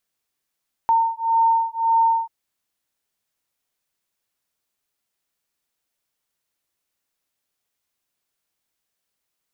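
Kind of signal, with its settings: beating tones 910 Hz, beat 1.8 Hz, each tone -19 dBFS 1.39 s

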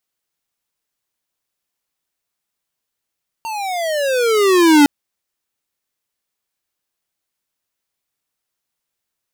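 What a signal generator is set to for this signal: gliding synth tone square, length 1.41 s, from 920 Hz, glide -20.5 st, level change +17 dB, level -8 dB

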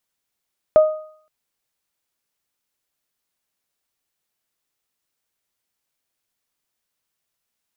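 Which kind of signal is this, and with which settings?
additive tone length 0.52 s, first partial 621 Hz, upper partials -19 dB, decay 0.53 s, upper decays 0.73 s, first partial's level -5.5 dB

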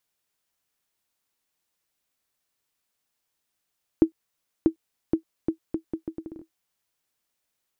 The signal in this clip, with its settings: bouncing ball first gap 0.64 s, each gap 0.74, 323 Hz, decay 100 ms -6.5 dBFS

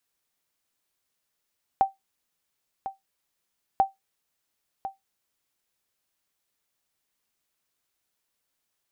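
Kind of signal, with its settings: sonar ping 778 Hz, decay 0.16 s, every 1.99 s, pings 2, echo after 1.05 s, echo -12.5 dB -11.5 dBFS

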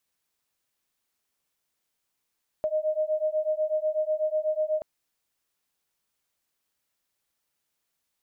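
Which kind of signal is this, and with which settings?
beating tones 615 Hz, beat 8.1 Hz, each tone -27 dBFS 2.18 s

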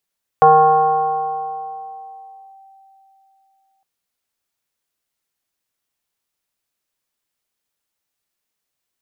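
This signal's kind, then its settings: FM tone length 3.41 s, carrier 777 Hz, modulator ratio 0.4, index 0.93, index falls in 2.19 s linear, decay 3.51 s, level -5 dB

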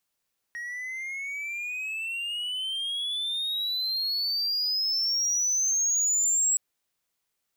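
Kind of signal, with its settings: gliding synth tone triangle, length 6.02 s, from 1.88 kHz, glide +24.5 st, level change +13 dB, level -18 dB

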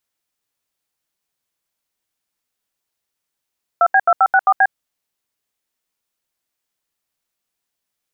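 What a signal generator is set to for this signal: DTMF "2B2564B", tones 55 ms, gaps 77 ms, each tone -11.5 dBFS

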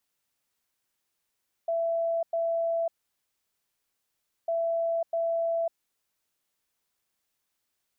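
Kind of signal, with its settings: beep pattern sine 667 Hz, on 0.55 s, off 0.10 s, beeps 2, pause 1.60 s, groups 2, -24.5 dBFS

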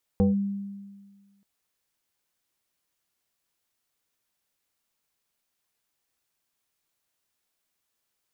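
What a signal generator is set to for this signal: FM tone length 1.23 s, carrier 199 Hz, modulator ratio 1.46, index 0.98, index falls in 0.15 s linear, decay 1.56 s, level -16 dB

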